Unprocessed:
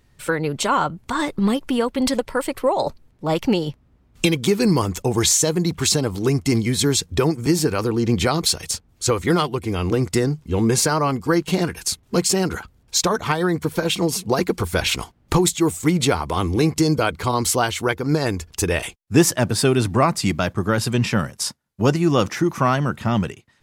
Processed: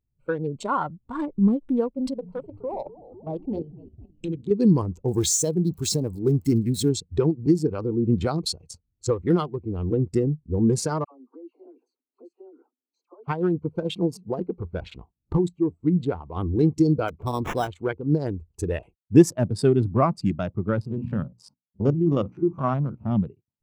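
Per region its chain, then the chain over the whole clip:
0:01.94–0:04.51: mains-hum notches 60/120/180/240/300/360/420 Hz + echo with shifted repeats 251 ms, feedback 55%, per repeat −77 Hz, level −9 dB + output level in coarse steps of 11 dB
0:05.08–0:06.89: spike at every zero crossing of −18.5 dBFS + one half of a high-frequency compander encoder only
0:11.04–0:13.28: downward compressor 2 to 1, threshold −40 dBFS + Chebyshev high-pass filter 250 Hz, order 6 + all-pass dispersion lows, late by 79 ms, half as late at 1,100 Hz
0:14.17–0:16.35: low-pass filter 4,000 Hz 6 dB per octave + tuned comb filter 59 Hz, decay 0.19 s, harmonics odd, mix 30%
0:17.08–0:17.68: dynamic equaliser 1,900 Hz, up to −3 dB, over −37 dBFS, Q 3.6 + sample-rate reduction 4,500 Hz
0:20.81–0:23.11: spectrum averaged block by block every 50 ms + mains-hum notches 60/120/180/240/300 Hz
whole clip: adaptive Wiener filter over 25 samples; every bin expanded away from the loudest bin 1.5 to 1

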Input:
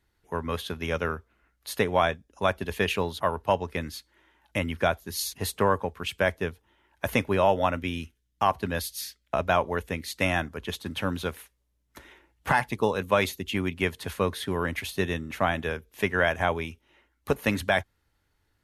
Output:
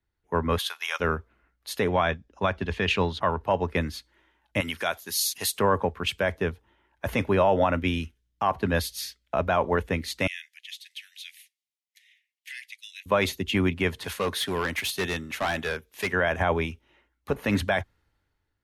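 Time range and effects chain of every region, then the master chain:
0:00.58–0:01.00: high-pass filter 860 Hz 24 dB per octave + high-shelf EQ 5,000 Hz +9 dB
0:01.89–0:03.41: low-pass filter 5,900 Hz + dynamic equaliser 530 Hz, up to −4 dB, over −36 dBFS, Q 0.75
0:04.60–0:05.59: spectral tilt +3.5 dB per octave + downward compressor 2 to 1, threshold −30 dBFS
0:10.27–0:13.06: Butterworth high-pass 1,900 Hz 72 dB per octave + downward compressor 4 to 1, threshold −36 dBFS
0:14.04–0:16.13: spectral tilt +2 dB per octave + gain into a clipping stage and back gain 26.5 dB
whole clip: brickwall limiter −17.5 dBFS; high-shelf EQ 6,500 Hz −9.5 dB; multiband upward and downward expander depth 40%; level +5.5 dB

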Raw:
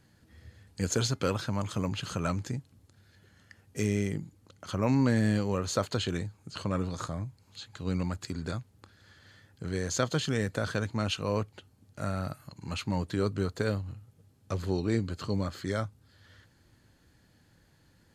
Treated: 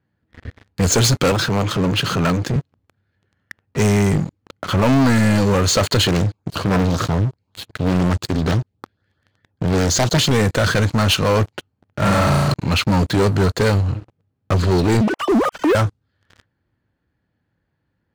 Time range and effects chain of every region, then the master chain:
0:01.31–0:02.56: high-pass filter 100 Hz 24 dB per octave + saturating transformer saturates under 740 Hz
0:06.07–0:10.31: auto-filter notch saw up 5.4 Hz 790–2,900 Hz + highs frequency-modulated by the lows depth 0.91 ms
0:12.02–0:12.54: leveller curve on the samples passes 3 + downward compressor 4 to 1, threshold −31 dBFS + flutter between parallel walls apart 6 metres, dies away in 1.3 s
0:15.01–0:15.75: three sine waves on the formant tracks + highs frequency-modulated by the lows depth 0.29 ms
whole clip: low-pass that shuts in the quiet parts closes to 2,300 Hz, open at −24 dBFS; high-pass filter 42 Hz 12 dB per octave; leveller curve on the samples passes 5; level +2 dB

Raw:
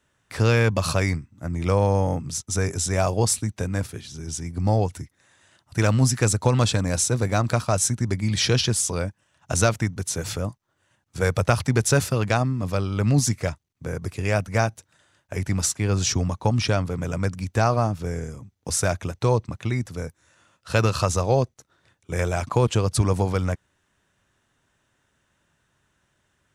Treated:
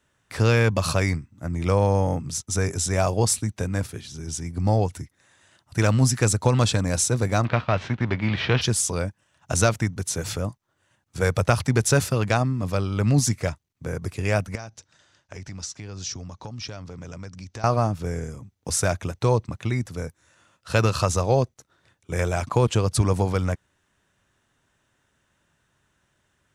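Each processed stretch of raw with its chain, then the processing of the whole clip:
0:07.43–0:08.61: spectral envelope flattened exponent 0.6 + low-pass filter 3,100 Hz 24 dB per octave
0:14.55–0:17.64: downward compressor 3 to 1, threshold −38 dBFS + low-pass with resonance 5,700 Hz, resonance Q 2.2
whole clip: no processing

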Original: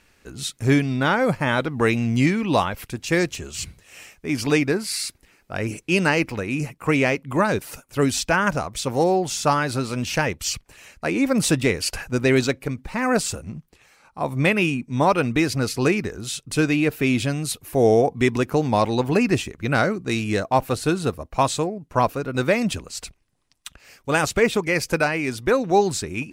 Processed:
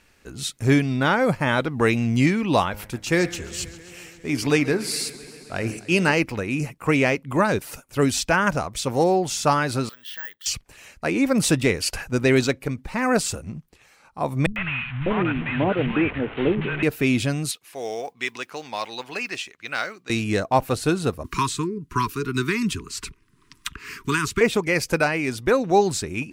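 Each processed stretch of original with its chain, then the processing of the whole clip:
0:02.66–0:06.13: hum removal 103.6 Hz, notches 22 + feedback echo with a swinging delay time 134 ms, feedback 79%, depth 93 cents, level −19 dB
0:09.89–0:10.46: downward compressor 2.5 to 1, threshold −24 dBFS + pair of resonant band-passes 2,400 Hz, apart 0.88 octaves + bad sample-rate conversion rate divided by 2×, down filtered, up zero stuff
0:14.46–0:16.83: linear delta modulator 16 kbit/s, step −27.5 dBFS + parametric band 2,300 Hz +3 dB 1.1 octaves + three-band delay without the direct sound lows, highs, mids 100/600 ms, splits 160/930 Hz
0:17.51–0:20.10: resonant band-pass 3,300 Hz, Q 0.71 + noise that follows the level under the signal 33 dB
0:21.24–0:24.41: Chebyshev band-stop filter 430–950 Hz, order 5 + multiband upward and downward compressor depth 70%
whole clip: no processing

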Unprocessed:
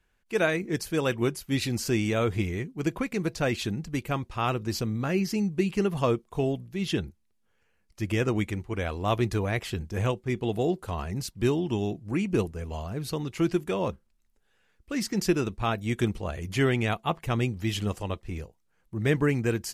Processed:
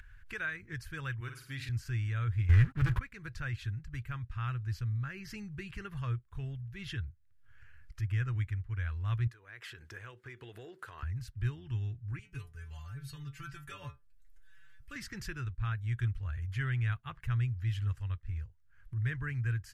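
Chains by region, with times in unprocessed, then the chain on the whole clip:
0:01.20–0:01.69: high-pass filter 120 Hz + low-shelf EQ 190 Hz −9.5 dB + flutter between parallel walls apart 8.8 metres, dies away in 0.4 s
0:02.49–0:02.99: low-shelf EQ 200 Hz +4.5 dB + leveller curve on the samples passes 5
0:09.27–0:11.03: downward compressor 12 to 1, threshold −35 dBFS + high-pass with resonance 390 Hz, resonance Q 1.6
0:12.19–0:14.96: high-shelf EQ 4,000 Hz +11.5 dB + stiff-string resonator 140 Hz, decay 0.2 s, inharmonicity 0.002
whole clip: drawn EQ curve 120 Hz 0 dB, 180 Hz −24 dB, 720 Hz −29 dB, 1,600 Hz −4 dB, 2,200 Hz −13 dB, 6,400 Hz −21 dB; upward compression, threshold −35 dBFS

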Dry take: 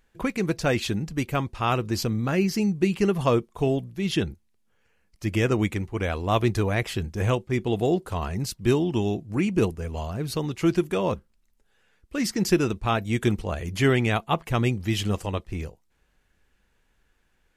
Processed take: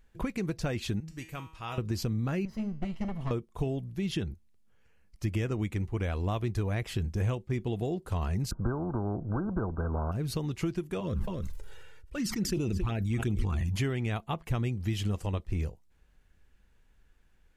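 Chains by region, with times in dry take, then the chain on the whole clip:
0:01.00–0:01.78: tilt shelving filter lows −4 dB, about 1,100 Hz + tuned comb filter 160 Hz, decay 0.55 s, mix 80%
0:02.45–0:03.31: lower of the sound and its delayed copy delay 1 ms + low-pass filter 2,500 Hz 6 dB per octave + tuned comb filter 220 Hz, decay 0.52 s, mix 70%
0:08.51–0:10.12: linear-phase brick-wall low-pass 1,600 Hz + every bin compressed towards the loudest bin 2 to 1
0:11.00–0:13.76: flanger swept by the level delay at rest 2.2 ms, full sweep at −17 dBFS + single-tap delay 273 ms −21 dB + level that may fall only so fast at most 30 dB per second
whole clip: downward compressor 4 to 1, threshold −29 dBFS; low-shelf EQ 170 Hz +9.5 dB; level −3.5 dB

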